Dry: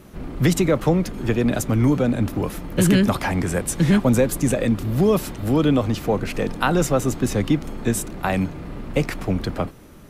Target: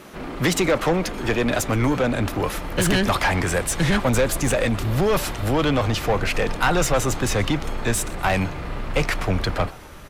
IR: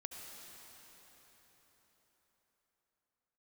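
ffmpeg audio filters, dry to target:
-filter_complex "[0:a]asplit=2[s0][s1];[s1]highpass=f=720:p=1,volume=10,asoftclip=type=tanh:threshold=0.531[s2];[s0][s2]amix=inputs=2:normalize=0,lowpass=f=5200:p=1,volume=0.501,asplit=4[s3][s4][s5][s6];[s4]adelay=123,afreqshift=140,volume=0.075[s7];[s5]adelay=246,afreqshift=280,volume=0.0359[s8];[s6]adelay=369,afreqshift=420,volume=0.0172[s9];[s3][s7][s8][s9]amix=inputs=4:normalize=0,asubboost=boost=6.5:cutoff=91,volume=0.596"

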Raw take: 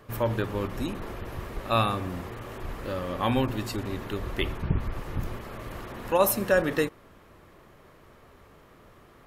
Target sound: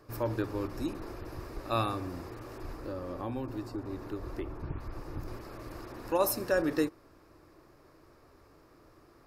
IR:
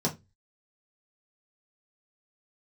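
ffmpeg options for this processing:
-filter_complex "[0:a]equalizer=f=200:t=o:w=0.33:g=-8,equalizer=f=315:t=o:w=0.33:g=9,equalizer=f=2000:t=o:w=0.33:g=-4,equalizer=f=3150:t=o:w=0.33:g=-9,equalizer=f=5000:t=o:w=0.33:g=9,asettb=1/sr,asplit=3[s0][s1][s2];[s0]atrim=end=2.734[s3];[s1]atrim=start=2.73:end=5.28,asetpts=PTS-STARTPTS,afade=t=in:d=0.004:c=qsin,afade=t=out:st=2.546:d=0.004:c=qsin,acrossover=split=660|1400[s4][s5][s6];[s4]acompressor=threshold=0.0398:ratio=4[s7];[s5]acompressor=threshold=0.01:ratio=4[s8];[s6]acompressor=threshold=0.00251:ratio=4[s9];[s7][s8][s9]amix=inputs=3:normalize=0[s10];[s2]atrim=start=5.276[s11];[s3][s10]acrossfade=d=0.004:c1=hsin:c2=qsin[s12];[s12][s11]acrossfade=d=0.004:c1=qsin:c2=hsin,volume=0.501"

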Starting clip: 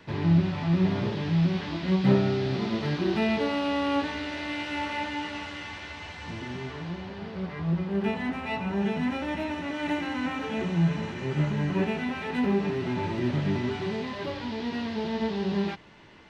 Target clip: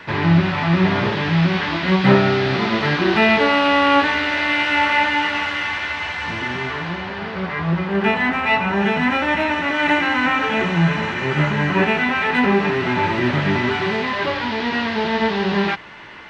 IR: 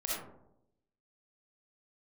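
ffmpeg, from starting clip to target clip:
-af "equalizer=f=1600:t=o:w=2.6:g=12.5,volume=1.88"

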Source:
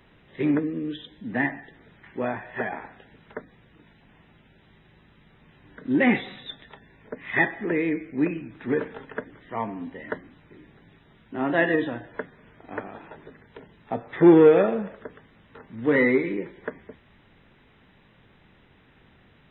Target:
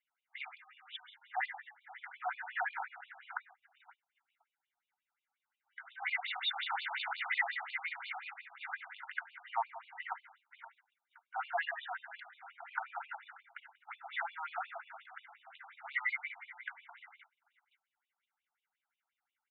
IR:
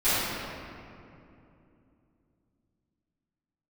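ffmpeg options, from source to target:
-filter_complex "[0:a]asettb=1/sr,asplit=3[s0][s1][s2];[s0]atrim=end=6.144[s3];[s1]atrim=start=6.14:end=8.34,asetpts=PTS-STARTPTS,afade=t=in:d=0.004:c=qsin,afade=t=out:st=2.196:d=0.004:c=qsin,aeval=exprs='val(0)+0.5*0.0316*sgn(val(0))':c=same[s4];[s2]atrim=start=8.336[s5];[s3][s4]acrossfade=d=0.004:c1=hsin:c2=qsin[s6];[s6][s5]acrossfade=d=0.004:c1=qsin:c2=hsin,acompressor=threshold=0.0178:ratio=2,aecho=1:1:1.4:0.55,aecho=1:1:518|1036|1554|2072|2590:0.112|0.0673|0.0404|0.0242|0.0145,asplit=2[s7][s8];[s8]highpass=f=720:p=1,volume=3.98,asoftclip=type=tanh:threshold=0.126[s9];[s7][s9]amix=inputs=2:normalize=0,lowpass=f=2100:p=1,volume=0.501,agate=range=0.0282:threshold=0.00398:ratio=16:detection=peak,afftfilt=real='re*between(b*sr/1024,920*pow(3400/920,0.5+0.5*sin(2*PI*5.6*pts/sr))/1.41,920*pow(3400/920,0.5+0.5*sin(2*PI*5.6*pts/sr))*1.41)':imag='im*between(b*sr/1024,920*pow(3400/920,0.5+0.5*sin(2*PI*5.6*pts/sr))/1.41,920*pow(3400/920,0.5+0.5*sin(2*PI*5.6*pts/sr))*1.41)':win_size=1024:overlap=0.75,volume=1.12"

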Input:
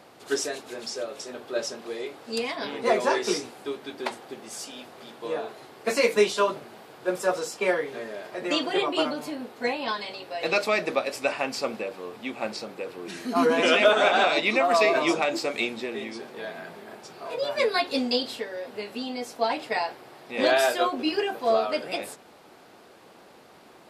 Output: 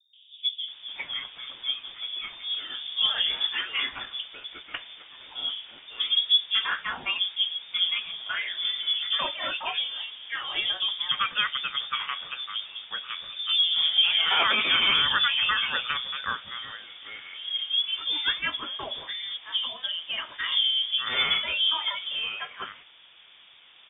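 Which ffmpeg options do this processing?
-filter_complex "[0:a]acrossover=split=180|830[s0][s1][s2];[s1]adelay=130[s3];[s2]adelay=680[s4];[s0][s3][s4]amix=inputs=3:normalize=0,lowpass=f=3200:t=q:w=0.5098,lowpass=f=3200:t=q:w=0.6013,lowpass=f=3200:t=q:w=0.9,lowpass=f=3200:t=q:w=2.563,afreqshift=-3800"

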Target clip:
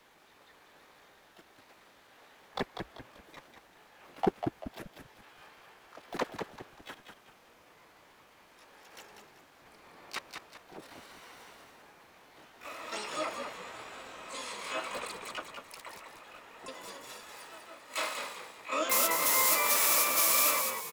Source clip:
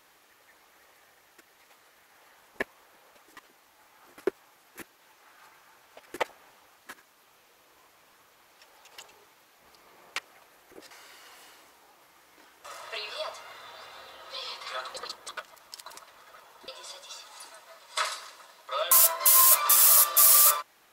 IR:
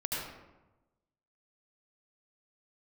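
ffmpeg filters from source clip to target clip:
-filter_complex "[0:a]highshelf=f=2100:g=-11,acrossover=split=140|630|2300[s0][s1][s2][s3];[s2]alimiter=level_in=2.11:limit=0.0631:level=0:latency=1:release=34,volume=0.473[s4];[s0][s1][s4][s3]amix=inputs=4:normalize=0,asplit=4[s5][s6][s7][s8];[s6]asetrate=22050,aresample=44100,atempo=2,volume=0.447[s9];[s7]asetrate=37084,aresample=44100,atempo=1.18921,volume=0.316[s10];[s8]asetrate=88200,aresample=44100,atempo=0.5,volume=0.891[s11];[s5][s9][s10][s11]amix=inputs=4:normalize=0,asplit=5[s12][s13][s14][s15][s16];[s13]adelay=194,afreqshift=-65,volume=0.501[s17];[s14]adelay=388,afreqshift=-130,volume=0.18[s18];[s15]adelay=582,afreqshift=-195,volume=0.0653[s19];[s16]adelay=776,afreqshift=-260,volume=0.0234[s20];[s12][s17][s18][s19][s20]amix=inputs=5:normalize=0,aeval=exprs='clip(val(0),-1,0.1)':c=same"

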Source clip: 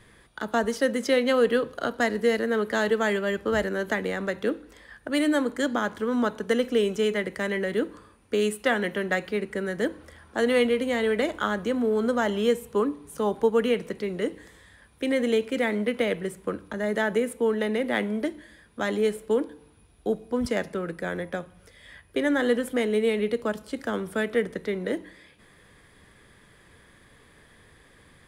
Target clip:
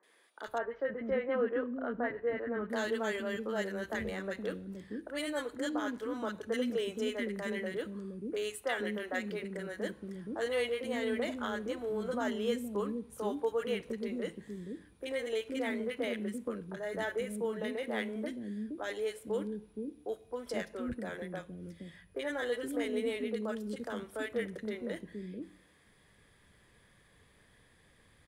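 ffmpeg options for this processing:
-filter_complex "[0:a]asettb=1/sr,asplit=3[s0][s1][s2];[s0]atrim=end=0.554[s3];[s1]atrim=start=0.55:end=2.67,asetpts=PTS-STARTPTS,afade=t=in:d=0.004:c=qsin,afade=t=out:st=2.116:d=0.004:c=qsin,lowpass=f=2000:w=0.5412,lowpass=f=2000:w=1.3066[s4];[s2]atrim=start=2.666[s5];[s3][s4]acrossfade=d=0.004:c1=hsin:c2=qsin[s6];[s6][s5]acrossfade=d=0.004:c1=qsin:c2=hsin,acrossover=split=340|1300[s7][s8][s9];[s9]adelay=30[s10];[s7]adelay=470[s11];[s11][s8][s10]amix=inputs=3:normalize=0,volume=0.398"

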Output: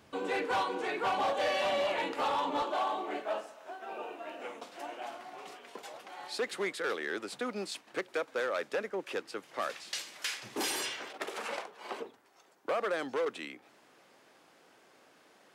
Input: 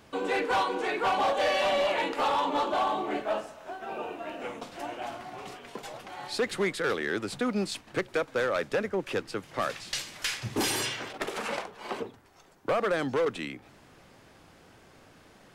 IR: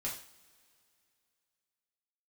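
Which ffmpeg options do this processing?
-af "asetnsamples=n=441:p=0,asendcmd='2.62 highpass f 320',highpass=56,volume=0.596"

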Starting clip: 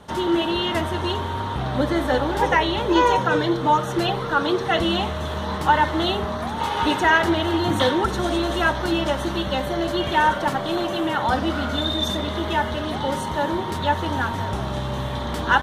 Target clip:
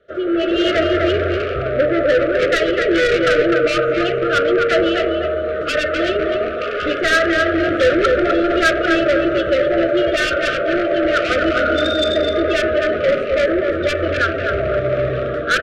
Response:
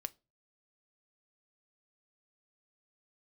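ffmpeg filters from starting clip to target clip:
-af "lowpass=2000,lowshelf=f=310:t=q:w=1.5:g=-10.5,aecho=1:1:253|506|759|1012:0.501|0.175|0.0614|0.0215,afftdn=nr=14:nf=-31,dynaudnorm=f=360:g=3:m=3.55,asoftclip=type=tanh:threshold=0.188,acontrast=83,asuperstop=centerf=910:order=12:qfactor=1.6,equalizer=f=230:t=o:w=1.1:g=-4.5,bandreject=f=96.97:t=h:w=4,bandreject=f=193.94:t=h:w=4,bandreject=f=290.91:t=h:w=4,bandreject=f=387.88:t=h:w=4,bandreject=f=484.85:t=h:w=4,bandreject=f=581.82:t=h:w=4,bandreject=f=678.79:t=h:w=4,bandreject=f=775.76:t=h:w=4,bandreject=f=872.73:t=h:w=4,bandreject=f=969.7:t=h:w=4,bandreject=f=1066.67:t=h:w=4,bandreject=f=1163.64:t=h:w=4,bandreject=f=1260.61:t=h:w=4,bandreject=f=1357.58:t=h:w=4,bandreject=f=1454.55:t=h:w=4,bandreject=f=1551.52:t=h:w=4,bandreject=f=1648.49:t=h:w=4,bandreject=f=1745.46:t=h:w=4,bandreject=f=1842.43:t=h:w=4,bandreject=f=1939.4:t=h:w=4,bandreject=f=2036.37:t=h:w=4,bandreject=f=2133.34:t=h:w=4,bandreject=f=2230.31:t=h:w=4,bandreject=f=2327.28:t=h:w=4,bandreject=f=2424.25:t=h:w=4,bandreject=f=2521.22:t=h:w=4,bandreject=f=2618.19:t=h:w=4,bandreject=f=2715.16:t=h:w=4,bandreject=f=2812.13:t=h:w=4,bandreject=f=2909.1:t=h:w=4,bandreject=f=3006.07:t=h:w=4,bandreject=f=3103.04:t=h:w=4"

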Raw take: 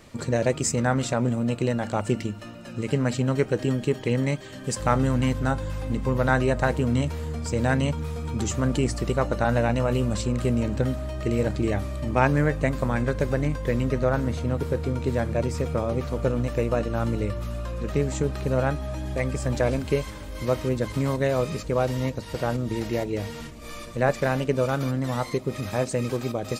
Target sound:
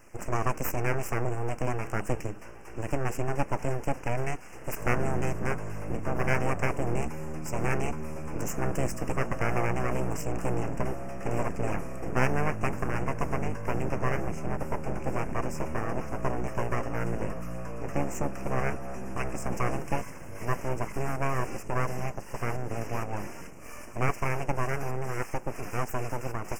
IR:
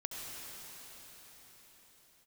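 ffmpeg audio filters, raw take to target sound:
-af "aeval=exprs='abs(val(0))':c=same,asuperstop=centerf=3800:order=8:qfactor=1.6,volume=0.75"

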